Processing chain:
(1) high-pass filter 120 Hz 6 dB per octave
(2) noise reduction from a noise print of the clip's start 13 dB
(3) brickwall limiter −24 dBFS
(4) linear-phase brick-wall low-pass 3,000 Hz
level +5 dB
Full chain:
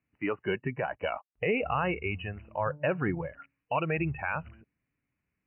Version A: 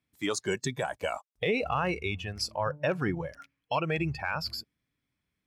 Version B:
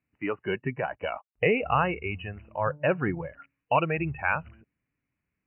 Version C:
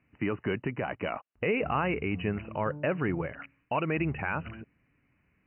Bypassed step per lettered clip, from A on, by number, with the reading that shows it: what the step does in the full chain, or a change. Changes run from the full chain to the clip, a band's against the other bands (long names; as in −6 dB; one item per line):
4, change in momentary loudness spread −2 LU
3, change in crest factor +3.5 dB
2, 250 Hz band +3.0 dB